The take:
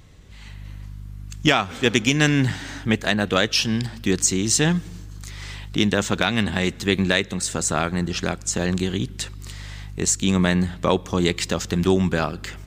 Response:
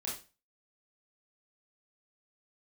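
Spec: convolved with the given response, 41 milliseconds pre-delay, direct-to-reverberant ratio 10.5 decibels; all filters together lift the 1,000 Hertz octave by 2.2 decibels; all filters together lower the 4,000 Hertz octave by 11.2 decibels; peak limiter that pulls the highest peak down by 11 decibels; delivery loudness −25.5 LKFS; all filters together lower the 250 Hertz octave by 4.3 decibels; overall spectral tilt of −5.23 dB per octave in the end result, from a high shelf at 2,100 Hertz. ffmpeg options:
-filter_complex "[0:a]equalizer=frequency=250:width_type=o:gain=-6.5,equalizer=frequency=1000:width_type=o:gain=6,highshelf=frequency=2100:gain=-8,equalizer=frequency=4000:width_type=o:gain=-7.5,alimiter=limit=-15dB:level=0:latency=1,asplit=2[link_01][link_02];[1:a]atrim=start_sample=2205,adelay=41[link_03];[link_02][link_03]afir=irnorm=-1:irlink=0,volume=-12dB[link_04];[link_01][link_04]amix=inputs=2:normalize=0,volume=2.5dB"

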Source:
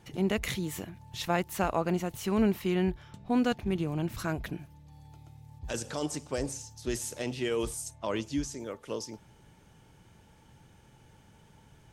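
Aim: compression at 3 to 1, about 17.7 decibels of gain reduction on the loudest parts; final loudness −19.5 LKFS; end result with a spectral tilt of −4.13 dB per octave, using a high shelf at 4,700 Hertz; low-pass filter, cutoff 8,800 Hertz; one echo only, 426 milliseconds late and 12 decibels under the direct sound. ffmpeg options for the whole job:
ffmpeg -i in.wav -af "lowpass=8800,highshelf=frequency=4700:gain=6.5,acompressor=threshold=-47dB:ratio=3,aecho=1:1:426:0.251,volume=27dB" out.wav

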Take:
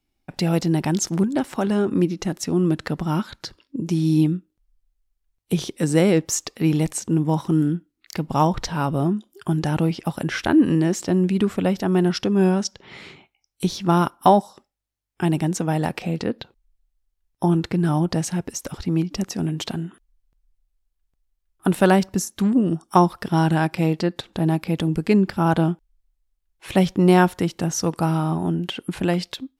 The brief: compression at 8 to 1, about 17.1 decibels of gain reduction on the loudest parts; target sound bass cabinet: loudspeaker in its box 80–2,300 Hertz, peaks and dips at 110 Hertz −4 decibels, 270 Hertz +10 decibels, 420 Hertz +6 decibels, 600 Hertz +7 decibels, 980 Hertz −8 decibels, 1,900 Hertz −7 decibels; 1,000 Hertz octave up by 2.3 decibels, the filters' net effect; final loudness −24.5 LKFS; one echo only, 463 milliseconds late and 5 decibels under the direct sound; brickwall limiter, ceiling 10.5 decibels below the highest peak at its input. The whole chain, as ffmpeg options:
ffmpeg -i in.wav -af "equalizer=frequency=1000:width_type=o:gain=5.5,acompressor=threshold=-24dB:ratio=8,alimiter=limit=-21dB:level=0:latency=1,highpass=frequency=80:width=0.5412,highpass=frequency=80:width=1.3066,equalizer=frequency=110:width_type=q:width=4:gain=-4,equalizer=frequency=270:width_type=q:width=4:gain=10,equalizer=frequency=420:width_type=q:width=4:gain=6,equalizer=frequency=600:width_type=q:width=4:gain=7,equalizer=frequency=980:width_type=q:width=4:gain=-8,equalizer=frequency=1900:width_type=q:width=4:gain=-7,lowpass=frequency=2300:width=0.5412,lowpass=frequency=2300:width=1.3066,aecho=1:1:463:0.562,volume=3.5dB" out.wav

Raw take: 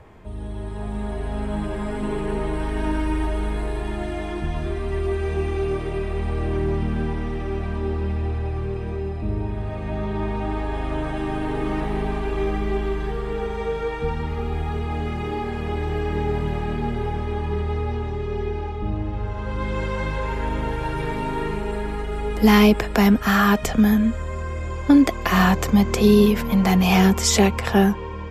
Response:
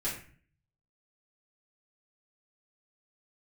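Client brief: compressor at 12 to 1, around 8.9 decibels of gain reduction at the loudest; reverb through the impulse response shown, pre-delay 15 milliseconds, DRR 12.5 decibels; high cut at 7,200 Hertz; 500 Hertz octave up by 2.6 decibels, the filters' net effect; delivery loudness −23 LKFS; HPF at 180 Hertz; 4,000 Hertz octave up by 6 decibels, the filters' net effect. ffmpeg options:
-filter_complex "[0:a]highpass=180,lowpass=7200,equalizer=frequency=500:width_type=o:gain=3.5,equalizer=frequency=4000:width_type=o:gain=8.5,acompressor=threshold=-18dB:ratio=12,asplit=2[link_01][link_02];[1:a]atrim=start_sample=2205,adelay=15[link_03];[link_02][link_03]afir=irnorm=-1:irlink=0,volume=-17dB[link_04];[link_01][link_04]amix=inputs=2:normalize=0,volume=2.5dB"

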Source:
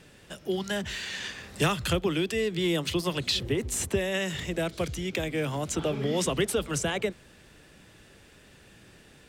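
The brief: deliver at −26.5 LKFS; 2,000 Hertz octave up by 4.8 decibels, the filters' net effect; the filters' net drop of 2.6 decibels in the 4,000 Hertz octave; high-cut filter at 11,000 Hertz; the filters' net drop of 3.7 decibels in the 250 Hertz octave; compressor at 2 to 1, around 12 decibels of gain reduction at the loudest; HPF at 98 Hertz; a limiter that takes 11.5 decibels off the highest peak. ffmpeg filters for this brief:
ffmpeg -i in.wav -af "highpass=98,lowpass=11000,equalizer=frequency=250:width_type=o:gain=-6,equalizer=frequency=2000:width_type=o:gain=8,equalizer=frequency=4000:width_type=o:gain=-7,acompressor=threshold=-45dB:ratio=2,volume=19dB,alimiter=limit=-17dB:level=0:latency=1" out.wav

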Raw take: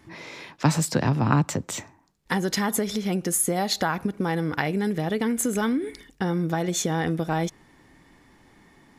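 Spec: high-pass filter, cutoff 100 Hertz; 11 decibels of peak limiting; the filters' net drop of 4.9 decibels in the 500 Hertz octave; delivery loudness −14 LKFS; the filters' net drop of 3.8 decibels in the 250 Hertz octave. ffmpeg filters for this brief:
ffmpeg -i in.wav -af "highpass=100,equalizer=frequency=250:width_type=o:gain=-4,equalizer=frequency=500:width_type=o:gain=-5,volume=15dB,alimiter=limit=-2.5dB:level=0:latency=1" out.wav

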